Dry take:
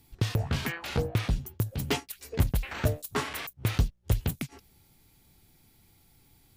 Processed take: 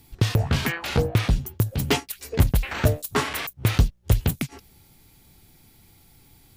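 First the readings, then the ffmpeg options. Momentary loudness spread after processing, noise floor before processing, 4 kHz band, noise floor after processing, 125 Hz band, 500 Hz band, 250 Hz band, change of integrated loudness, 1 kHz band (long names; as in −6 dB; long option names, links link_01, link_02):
5 LU, −63 dBFS, +7.0 dB, −56 dBFS, +6.5 dB, +7.0 dB, +7.0 dB, +7.0 dB, +7.0 dB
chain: -af "acontrast=80"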